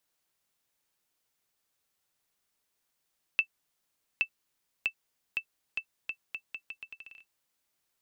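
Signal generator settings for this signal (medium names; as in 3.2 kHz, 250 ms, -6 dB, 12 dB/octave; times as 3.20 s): bouncing ball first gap 0.82 s, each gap 0.79, 2.65 kHz, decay 80 ms -14 dBFS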